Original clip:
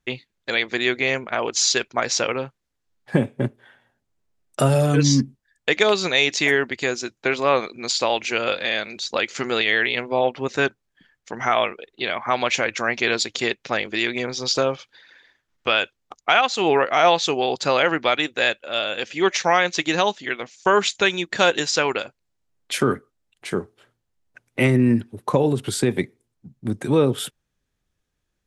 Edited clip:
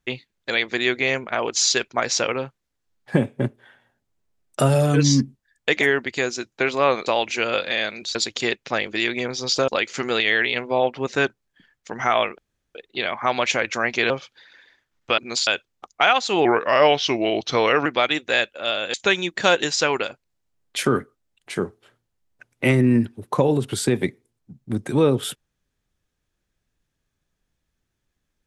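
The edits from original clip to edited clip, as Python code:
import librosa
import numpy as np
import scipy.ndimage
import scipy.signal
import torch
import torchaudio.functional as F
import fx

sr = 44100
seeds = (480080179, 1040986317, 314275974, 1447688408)

y = fx.edit(x, sr, fx.cut(start_s=5.81, length_s=0.65),
    fx.move(start_s=7.71, length_s=0.29, to_s=15.75),
    fx.insert_room_tone(at_s=11.79, length_s=0.37),
    fx.move(start_s=13.14, length_s=1.53, to_s=9.09),
    fx.speed_span(start_s=16.73, length_s=1.21, speed=0.86),
    fx.cut(start_s=19.02, length_s=1.87), tone=tone)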